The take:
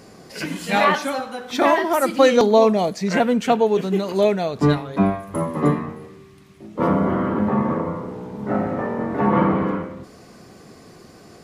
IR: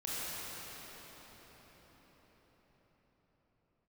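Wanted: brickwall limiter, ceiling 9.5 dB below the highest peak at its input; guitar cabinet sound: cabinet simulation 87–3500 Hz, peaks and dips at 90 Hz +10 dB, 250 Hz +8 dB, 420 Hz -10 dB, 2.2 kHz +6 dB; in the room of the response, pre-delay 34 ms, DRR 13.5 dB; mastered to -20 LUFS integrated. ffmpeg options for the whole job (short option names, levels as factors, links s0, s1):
-filter_complex "[0:a]alimiter=limit=0.282:level=0:latency=1,asplit=2[s0][s1];[1:a]atrim=start_sample=2205,adelay=34[s2];[s1][s2]afir=irnorm=-1:irlink=0,volume=0.119[s3];[s0][s3]amix=inputs=2:normalize=0,highpass=87,equalizer=f=90:t=q:w=4:g=10,equalizer=f=250:t=q:w=4:g=8,equalizer=f=420:t=q:w=4:g=-10,equalizer=f=2200:t=q:w=4:g=6,lowpass=f=3500:w=0.5412,lowpass=f=3500:w=1.3066,volume=1.12"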